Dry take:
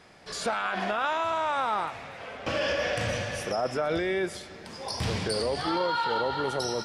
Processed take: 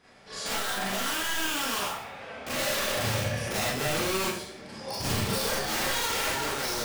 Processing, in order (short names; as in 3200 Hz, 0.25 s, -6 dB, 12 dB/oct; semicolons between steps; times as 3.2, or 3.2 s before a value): wrapped overs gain 23 dB; Schroeder reverb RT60 0.51 s, combs from 28 ms, DRR -8.5 dB; 2.96–5.38 dynamic EQ 130 Hz, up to +8 dB, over -42 dBFS, Q 1; gain -9 dB